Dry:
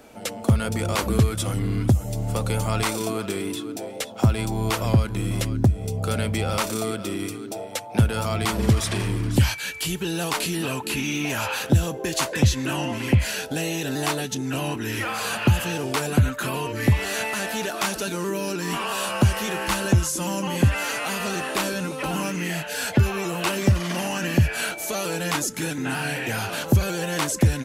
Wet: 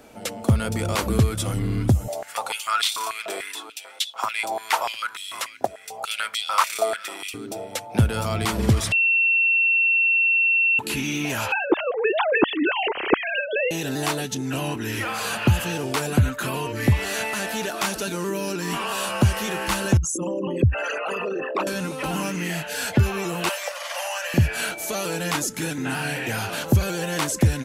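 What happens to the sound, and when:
2.08–7.34 stepped high-pass 6.8 Hz 660–3500 Hz
8.92–10.79 bleep 2710 Hz -16 dBFS
11.52–13.71 sine-wave speech
19.97–21.67 formant sharpening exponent 3
23.49–24.34 steep high-pass 500 Hz 96 dB/oct

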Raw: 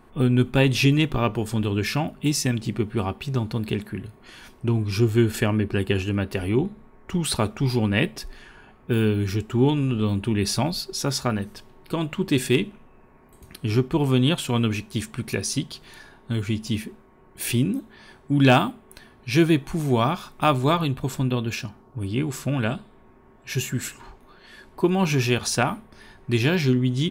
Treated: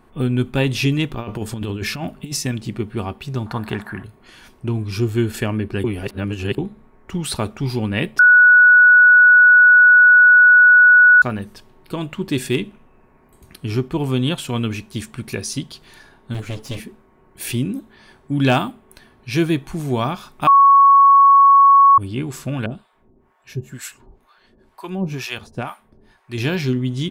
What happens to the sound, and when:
1.13–2.37 negative-ratio compressor -25 dBFS, ratio -0.5
3.46–4.04 band shelf 1100 Hz +13 dB
5.84–6.58 reverse
8.19–11.22 bleep 1470 Hz -6 dBFS
16.34–16.8 minimum comb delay 7.3 ms
20.47–21.98 bleep 1110 Hz -6.5 dBFS
22.66–26.38 harmonic tremolo 2.1 Hz, depth 100%, crossover 650 Hz

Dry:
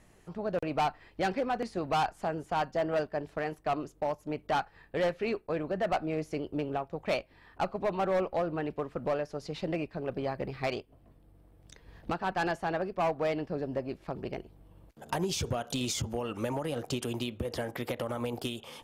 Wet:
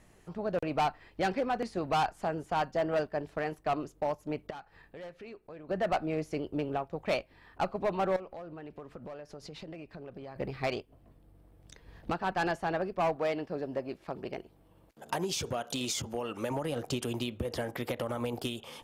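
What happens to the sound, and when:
4.5–5.69 compressor 2.5:1, threshold -51 dBFS
8.16–10.36 compressor 5:1, threshold -42 dBFS
13.16–16.51 low shelf 140 Hz -11 dB

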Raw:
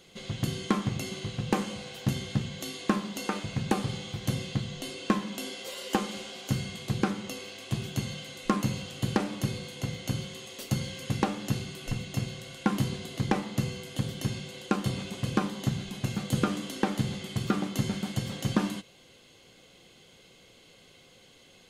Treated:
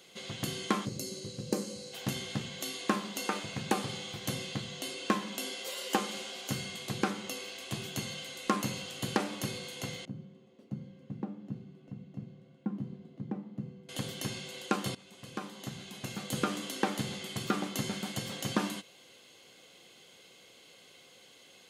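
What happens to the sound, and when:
0.85–1.93 spectral gain 610–3900 Hz -13 dB
10.05–13.89 band-pass 180 Hz, Q 1.8
14.95–16.64 fade in, from -18 dB
whole clip: HPF 350 Hz 6 dB/oct; high shelf 9500 Hz +4 dB

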